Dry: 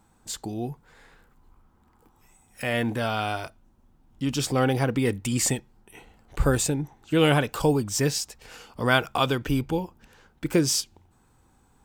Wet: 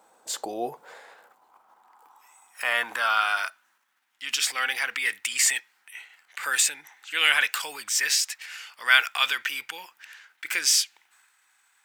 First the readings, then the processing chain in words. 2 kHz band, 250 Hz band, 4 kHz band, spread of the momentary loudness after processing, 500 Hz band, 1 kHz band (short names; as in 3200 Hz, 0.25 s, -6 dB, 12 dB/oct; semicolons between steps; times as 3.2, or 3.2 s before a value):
+7.5 dB, under -20 dB, +6.0 dB, 19 LU, -13.5 dB, 0.0 dB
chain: transient shaper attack -1 dB, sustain +6 dB; high-pass sweep 550 Hz -> 1900 Hz, 0.79–4.1; gain +3 dB